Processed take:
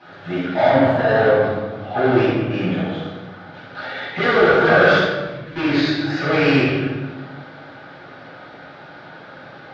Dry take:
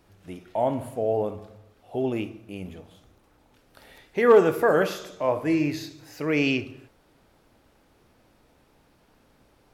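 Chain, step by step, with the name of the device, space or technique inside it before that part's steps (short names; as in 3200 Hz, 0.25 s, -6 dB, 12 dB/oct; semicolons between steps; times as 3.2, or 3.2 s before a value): overdrive pedal into a guitar cabinet (overdrive pedal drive 32 dB, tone 7100 Hz, clips at -8 dBFS; speaker cabinet 100–3900 Hz, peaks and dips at 140 Hz +6 dB, 420 Hz -4 dB, 1000 Hz -5 dB, 1500 Hz +5 dB, 2600 Hz -8 dB); 4.98–5.56 passive tone stack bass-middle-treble 6-0-2; shoebox room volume 740 m³, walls mixed, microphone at 8.4 m; gain -14 dB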